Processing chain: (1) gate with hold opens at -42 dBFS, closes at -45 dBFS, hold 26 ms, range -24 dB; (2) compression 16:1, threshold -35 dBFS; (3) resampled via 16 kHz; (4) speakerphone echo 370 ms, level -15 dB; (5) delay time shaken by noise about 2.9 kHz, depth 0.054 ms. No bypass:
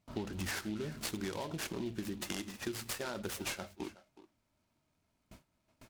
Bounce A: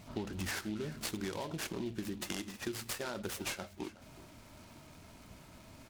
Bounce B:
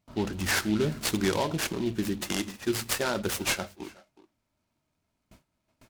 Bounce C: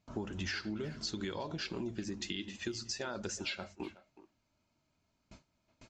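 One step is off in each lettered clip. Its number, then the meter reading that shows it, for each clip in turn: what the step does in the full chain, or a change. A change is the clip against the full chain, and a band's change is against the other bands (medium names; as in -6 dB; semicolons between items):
1, momentary loudness spread change +13 LU; 2, mean gain reduction 8.5 dB; 5, 4 kHz band +3.0 dB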